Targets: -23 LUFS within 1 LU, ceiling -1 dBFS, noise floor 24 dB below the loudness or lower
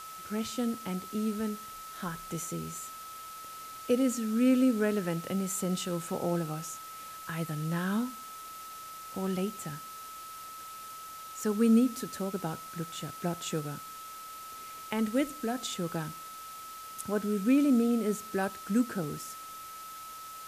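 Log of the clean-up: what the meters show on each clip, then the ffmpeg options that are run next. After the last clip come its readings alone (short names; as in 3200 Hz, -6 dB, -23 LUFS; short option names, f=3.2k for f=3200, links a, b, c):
steady tone 1300 Hz; tone level -43 dBFS; noise floor -45 dBFS; noise floor target -56 dBFS; loudness -32.0 LUFS; peak -15.5 dBFS; loudness target -23.0 LUFS
-> -af "bandreject=f=1.3k:w=30"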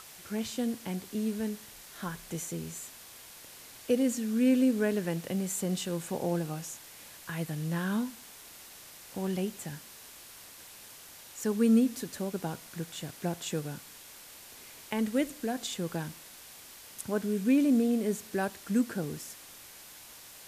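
steady tone none; noise floor -50 dBFS; noise floor target -56 dBFS
-> -af "afftdn=nr=6:nf=-50"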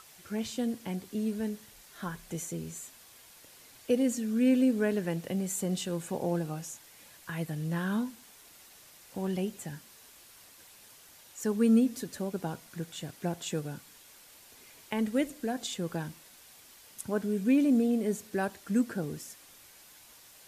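noise floor -55 dBFS; noise floor target -56 dBFS
-> -af "afftdn=nr=6:nf=-55"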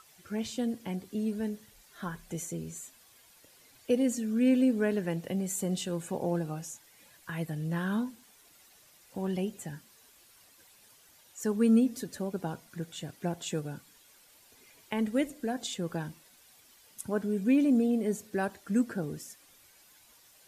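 noise floor -60 dBFS; loudness -31.5 LUFS; peak -15.5 dBFS; loudness target -23.0 LUFS
-> -af "volume=8.5dB"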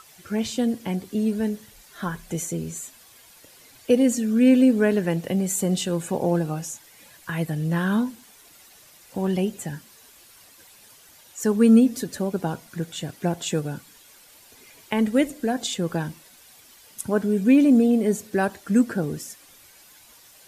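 loudness -23.0 LUFS; peak -7.0 dBFS; noise floor -52 dBFS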